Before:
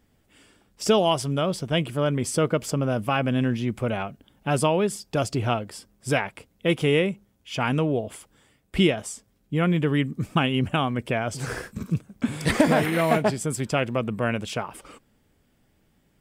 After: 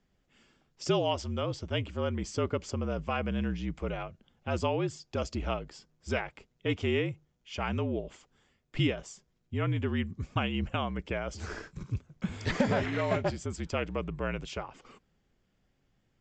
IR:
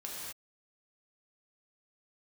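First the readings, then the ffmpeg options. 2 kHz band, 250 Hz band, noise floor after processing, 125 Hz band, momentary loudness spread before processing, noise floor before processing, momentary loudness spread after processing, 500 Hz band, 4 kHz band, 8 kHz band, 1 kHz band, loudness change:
-8.0 dB, -9.0 dB, -74 dBFS, -7.0 dB, 11 LU, -66 dBFS, 12 LU, -8.5 dB, -8.5 dB, -13.0 dB, -9.0 dB, -8.5 dB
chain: -af "afreqshift=-51,aresample=16000,aresample=44100,volume=-8dB"

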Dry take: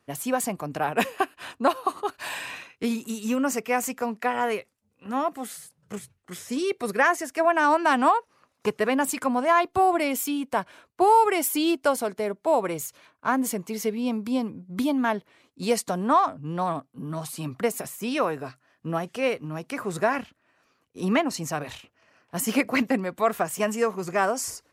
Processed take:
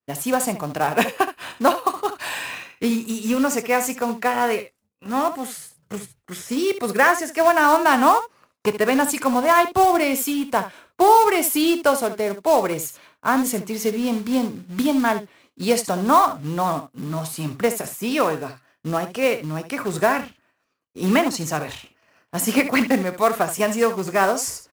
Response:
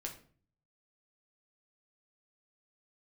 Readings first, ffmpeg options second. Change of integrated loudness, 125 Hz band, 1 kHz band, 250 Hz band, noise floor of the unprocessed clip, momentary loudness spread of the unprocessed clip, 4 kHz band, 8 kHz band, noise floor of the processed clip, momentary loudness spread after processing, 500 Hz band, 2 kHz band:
+5.0 dB, +5.0 dB, +5.0 dB, +5.0 dB, -71 dBFS, 12 LU, +6.0 dB, +5.5 dB, -71 dBFS, 12 LU, +5.0 dB, +5.0 dB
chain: -af "acrusher=bits=4:mode=log:mix=0:aa=0.000001,aecho=1:1:26|70:0.178|0.251,agate=range=-33dB:threshold=-56dB:ratio=3:detection=peak,volume=4.5dB"

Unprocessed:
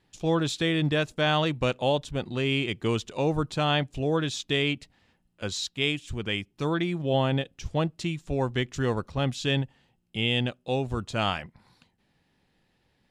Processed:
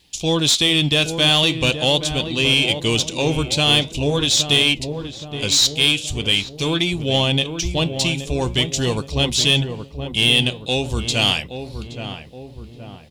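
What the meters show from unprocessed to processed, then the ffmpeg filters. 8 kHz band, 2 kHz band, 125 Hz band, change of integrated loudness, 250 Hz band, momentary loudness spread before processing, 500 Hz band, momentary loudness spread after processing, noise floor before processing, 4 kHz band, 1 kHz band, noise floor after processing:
+19.0 dB, +9.5 dB, +6.5 dB, +10.0 dB, +6.0 dB, 6 LU, +5.0 dB, 13 LU, -71 dBFS, +16.0 dB, +3.0 dB, -39 dBFS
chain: -filter_complex "[0:a]bandreject=f=1.3k:w=9.5,aexciter=amount=6.8:drive=7.6:freq=2.5k,equalizer=f=66:t=o:w=0.29:g=14,asplit=2[a][b];[b]acontrast=37,volume=-2dB[c];[a][c]amix=inputs=2:normalize=0,highshelf=f=3.2k:g=-8.5,asoftclip=type=tanh:threshold=-4.5dB,flanger=delay=3.5:depth=9.7:regen=-81:speed=0.43:shape=triangular,asplit=2[d][e];[e]adelay=822,lowpass=f=1.1k:p=1,volume=-7.5dB,asplit=2[f][g];[g]adelay=822,lowpass=f=1.1k:p=1,volume=0.53,asplit=2[h][i];[i]adelay=822,lowpass=f=1.1k:p=1,volume=0.53,asplit=2[j][k];[k]adelay=822,lowpass=f=1.1k:p=1,volume=0.53,asplit=2[l][m];[m]adelay=822,lowpass=f=1.1k:p=1,volume=0.53,asplit=2[n][o];[o]adelay=822,lowpass=f=1.1k:p=1,volume=0.53[p];[f][h][j][l][n][p]amix=inputs=6:normalize=0[q];[d][q]amix=inputs=2:normalize=0,volume=2dB"

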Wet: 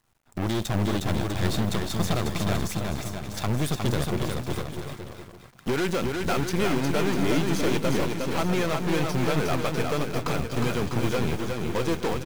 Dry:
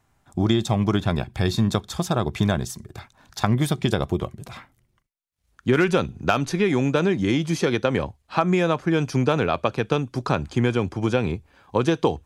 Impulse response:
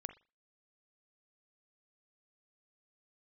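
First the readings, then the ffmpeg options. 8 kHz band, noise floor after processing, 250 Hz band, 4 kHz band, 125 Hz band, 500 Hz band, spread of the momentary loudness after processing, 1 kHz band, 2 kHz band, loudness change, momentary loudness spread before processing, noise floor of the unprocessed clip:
+1.5 dB, -48 dBFS, -4.0 dB, -1.5 dB, -3.5 dB, -4.0 dB, 8 LU, -3.5 dB, -3.0 dB, -4.0 dB, 8 LU, -68 dBFS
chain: -filter_complex "[0:a]acrusher=bits=8:dc=4:mix=0:aa=0.000001,volume=18.5dB,asoftclip=hard,volume=-18.5dB,aeval=exprs='0.126*(cos(1*acos(clip(val(0)/0.126,-1,1)))-cos(1*PI/2))+0.0355*(cos(4*acos(clip(val(0)/0.126,-1,1)))-cos(4*PI/2))':c=same,asplit=2[a][b];[b]aecho=0:1:360|648|878.4|1063|1210:0.631|0.398|0.251|0.158|0.1[c];[a][c]amix=inputs=2:normalize=0,volume=-3.5dB"

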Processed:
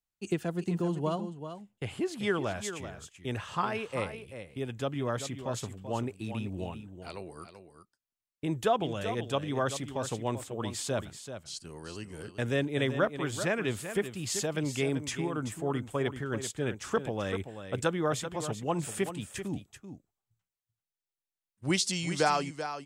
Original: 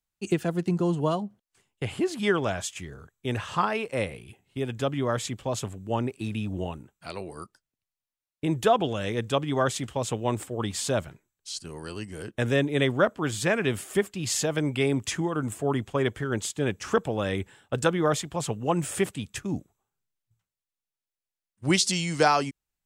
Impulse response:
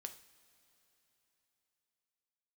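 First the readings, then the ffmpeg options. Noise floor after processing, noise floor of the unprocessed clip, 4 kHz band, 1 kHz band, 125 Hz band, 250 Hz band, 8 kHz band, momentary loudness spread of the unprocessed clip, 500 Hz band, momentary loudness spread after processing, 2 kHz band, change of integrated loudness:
under -85 dBFS, under -85 dBFS, -5.0 dB, -5.0 dB, -5.0 dB, -5.0 dB, -5.0 dB, 14 LU, -5.0 dB, 14 LU, -5.0 dB, -5.5 dB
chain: -af "aecho=1:1:386:0.316,volume=-5.5dB"

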